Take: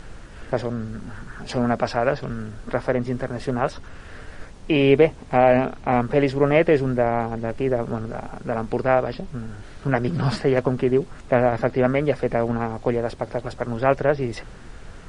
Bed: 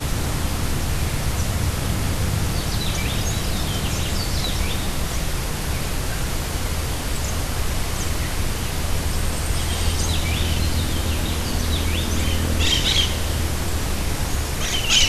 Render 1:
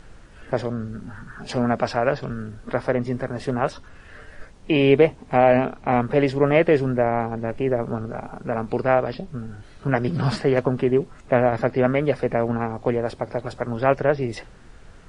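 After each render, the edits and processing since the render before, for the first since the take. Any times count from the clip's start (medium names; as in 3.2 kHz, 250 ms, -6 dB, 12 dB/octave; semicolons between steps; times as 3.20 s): noise print and reduce 6 dB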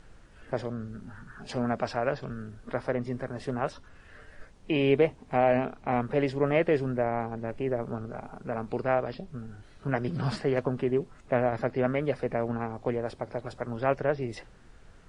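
trim -7.5 dB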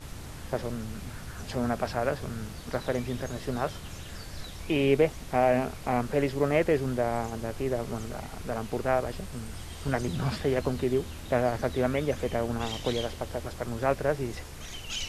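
add bed -18.5 dB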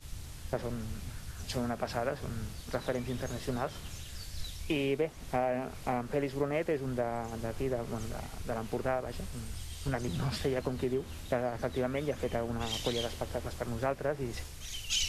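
compression 6:1, threshold -28 dBFS, peak gain reduction 10.5 dB; three bands expanded up and down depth 70%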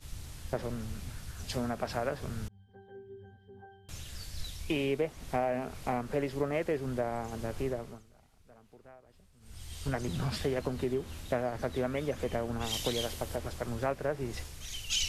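2.48–3.89 s: pitch-class resonator G, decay 0.62 s; 7.66–9.77 s: dip -22.5 dB, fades 0.37 s; 12.64–13.36 s: treble shelf 9.1 kHz +10.5 dB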